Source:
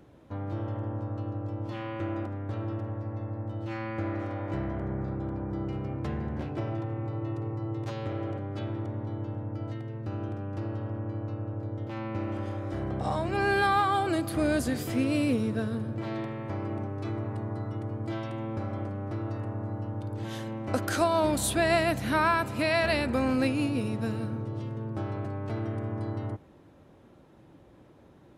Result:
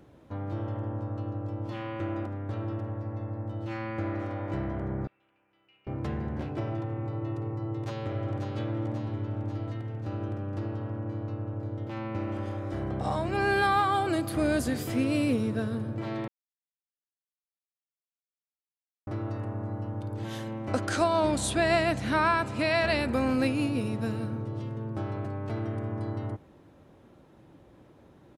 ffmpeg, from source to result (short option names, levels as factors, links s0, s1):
-filter_complex "[0:a]asettb=1/sr,asplit=3[s0][s1][s2];[s0]atrim=end=5.074[s3];[s1]atrim=start=5.07:end=5.87,asetpts=PTS-STARTPTS,afade=t=in:d=0.004:c=qsin,afade=t=out:st=0.796:d=0.004:c=qsin,bandpass=f=2700:t=q:w=10[s4];[s2]atrim=start=5.866[s5];[s3][s4]acrossfade=d=0.004:c1=hsin:c2=qsin[s6];[s6][s5]acrossfade=d=0.004:c1=qsin:c2=hsin,asplit=2[s7][s8];[s8]afade=t=in:st=7.59:d=0.01,afade=t=out:st=8.51:d=0.01,aecho=0:1:540|1080|1620|2160|2700|3240|3780|4320|4860|5400:0.562341|0.365522|0.237589|0.154433|0.100381|0.0652479|0.0424112|0.0275673|0.0179187|0.0116472[s9];[s7][s9]amix=inputs=2:normalize=0,asettb=1/sr,asplit=3[s10][s11][s12];[s10]atrim=end=20.734[s13];[s11]atrim=start=20.73:end=22.99,asetpts=PTS-STARTPTS,afade=t=in:d=0.004:c=qsin,afade=t=out:st=2.256:d=0.004:c=qsin,lowpass=f=9200:w=0.5412,lowpass=f=9200:w=1.3066[s14];[s12]atrim=start=22.986[s15];[s13][s14]acrossfade=d=0.004:c1=hsin:c2=qsin[s16];[s16][s15]acrossfade=d=0.004:c1=qsin:c2=hsin,asplit=3[s17][s18][s19];[s17]atrim=end=16.28,asetpts=PTS-STARTPTS,afade=t=out:st=16.276:d=0.004:c=hsin[s20];[s18]atrim=start=16.28:end=19.07,asetpts=PTS-STARTPTS,volume=0[s21];[s19]atrim=start=19.07,asetpts=PTS-STARTPTS,afade=t=in:d=0.004:c=hsin[s22];[s20][s21][s22]concat=n=3:v=0:a=1"